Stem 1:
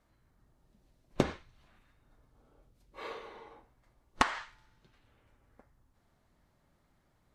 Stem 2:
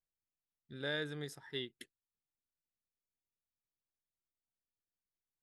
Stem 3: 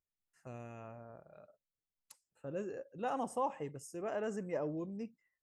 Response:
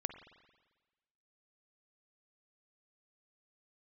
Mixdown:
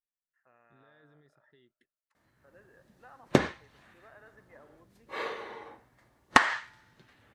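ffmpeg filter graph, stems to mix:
-filter_complex "[0:a]highpass=100,dynaudnorm=framelen=200:gausssize=3:maxgain=5dB,adelay=2150,volume=1.5dB[link_01];[1:a]alimiter=level_in=12dB:limit=-24dB:level=0:latency=1:release=26,volume=-12dB,volume=-14.5dB[link_02];[2:a]bandpass=frequency=1500:width_type=q:width=1.7:csg=0,volume=-8dB,asplit=2[link_03][link_04];[link_04]volume=-5dB[link_05];[link_02][link_03]amix=inputs=2:normalize=0,lowpass=frequency=1400:poles=1,acompressor=threshold=-58dB:ratio=6,volume=0dB[link_06];[3:a]atrim=start_sample=2205[link_07];[link_05][link_07]afir=irnorm=-1:irlink=0[link_08];[link_01][link_06][link_08]amix=inputs=3:normalize=0,equalizer=frequency=1800:width_type=o:width=0.3:gain=7"

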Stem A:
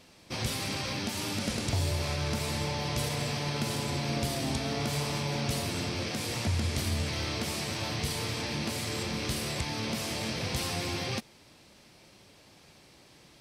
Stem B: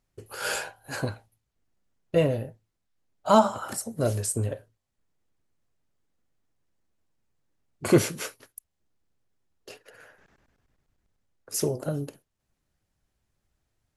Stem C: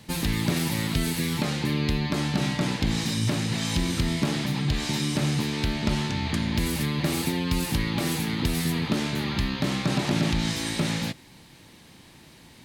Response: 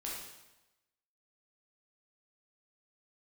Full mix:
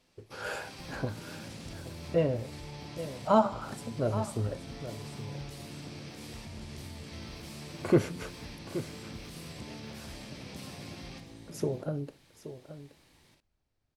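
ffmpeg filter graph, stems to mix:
-filter_complex "[0:a]alimiter=limit=-24dB:level=0:latency=1:release=26,volume=-16dB,asplit=3[link_01][link_02][link_03];[link_02]volume=-4dB[link_04];[link_03]volume=-18dB[link_05];[1:a]lowpass=frequency=1700:poles=1,volume=-4dB,asplit=3[link_06][link_07][link_08];[link_07]volume=-12.5dB[link_09];[2:a]equalizer=frequency=220:width_type=o:width=2.1:gain=-8,acrossover=split=240|560[link_10][link_11][link_12];[link_10]acompressor=threshold=-39dB:ratio=4[link_13];[link_11]acompressor=threshold=-42dB:ratio=4[link_14];[link_12]acompressor=threshold=-56dB:ratio=4[link_15];[link_13][link_14][link_15]amix=inputs=3:normalize=0,adelay=700,volume=-11dB,asplit=2[link_16][link_17];[link_17]volume=-5.5dB[link_18];[link_08]apad=whole_len=590998[link_19];[link_01][link_19]sidechaincompress=threshold=-40dB:ratio=8:attack=16:release=223[link_20];[3:a]atrim=start_sample=2205[link_21];[link_04][link_18]amix=inputs=2:normalize=0[link_22];[link_22][link_21]afir=irnorm=-1:irlink=0[link_23];[link_05][link_09]amix=inputs=2:normalize=0,aecho=0:1:825:1[link_24];[link_20][link_06][link_16][link_23][link_24]amix=inputs=5:normalize=0"

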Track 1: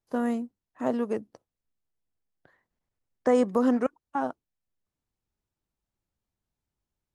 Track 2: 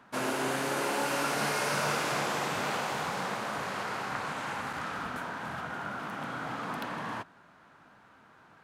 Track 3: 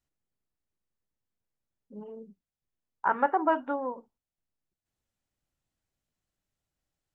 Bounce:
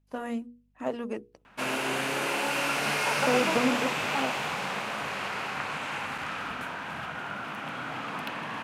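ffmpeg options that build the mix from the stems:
ffmpeg -i stem1.wav -i stem2.wav -i stem3.wav -filter_complex "[0:a]aphaser=in_gain=1:out_gain=1:delay=3.8:decay=0.3:speed=1.4:type=sinusoidal,aeval=exprs='val(0)+0.000631*(sin(2*PI*50*n/s)+sin(2*PI*2*50*n/s)/2+sin(2*PI*3*50*n/s)/3+sin(2*PI*4*50*n/s)/4+sin(2*PI*5*50*n/s)/5)':channel_layout=same,volume=-4dB[link_01];[1:a]adelay=1450,volume=0dB[link_02];[2:a]lowpass=1300,volume=-6.5dB[link_03];[link_01][link_02][link_03]amix=inputs=3:normalize=0,equalizer=frequency=2600:width=2.1:gain=9,bandreject=frequency=60:width_type=h:width=6,bandreject=frequency=120:width_type=h:width=6,bandreject=frequency=180:width_type=h:width=6,bandreject=frequency=240:width_type=h:width=6,bandreject=frequency=300:width_type=h:width=6,bandreject=frequency=360:width_type=h:width=6,bandreject=frequency=420:width_type=h:width=6,bandreject=frequency=480:width_type=h:width=6" out.wav

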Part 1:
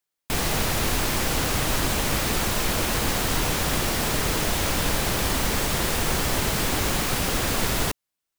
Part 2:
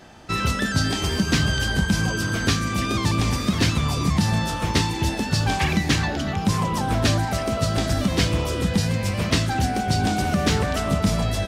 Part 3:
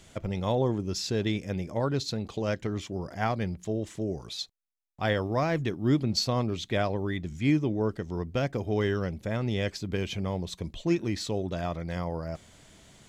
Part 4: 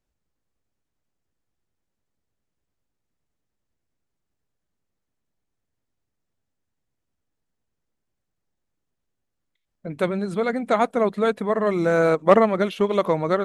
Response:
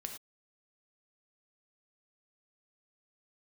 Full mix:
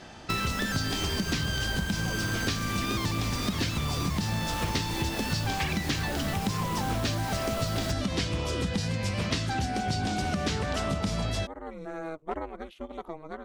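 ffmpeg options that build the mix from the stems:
-filter_complex "[0:a]volume=-9.5dB[link_01];[1:a]lowpass=5200,aemphasis=mode=production:type=50kf,volume=-0.5dB[link_02];[3:a]aeval=exprs='val(0)*sin(2*PI*160*n/s)':channel_layout=same,volume=-15.5dB[link_03];[link_01][link_02][link_03]amix=inputs=3:normalize=0,acompressor=threshold=-26dB:ratio=6"

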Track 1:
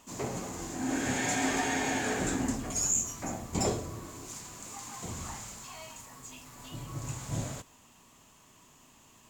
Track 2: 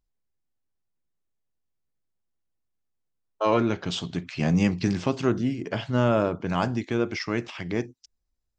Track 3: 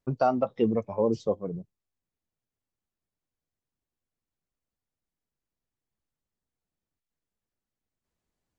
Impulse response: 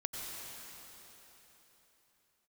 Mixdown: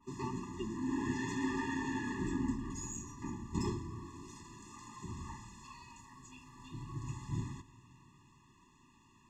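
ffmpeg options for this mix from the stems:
-filter_complex "[0:a]adynamicequalizer=threshold=0.00398:dfrequency=1800:dqfactor=0.7:tfrequency=1800:tqfactor=0.7:attack=5:release=100:ratio=0.375:range=2.5:mode=cutabove:tftype=highshelf,volume=-4dB,asplit=2[link_01][link_02];[link_02]volume=-16.5dB[link_03];[2:a]bass=frequency=250:gain=-14,treble=frequency=4000:gain=13,volume=-8.5dB[link_04];[3:a]atrim=start_sample=2205[link_05];[link_03][link_05]afir=irnorm=-1:irlink=0[link_06];[link_01][link_04][link_06]amix=inputs=3:normalize=0,adynamicsmooth=sensitivity=2:basefreq=5800,afftfilt=real='re*eq(mod(floor(b*sr/1024/410),2),0)':imag='im*eq(mod(floor(b*sr/1024/410),2),0)':win_size=1024:overlap=0.75"

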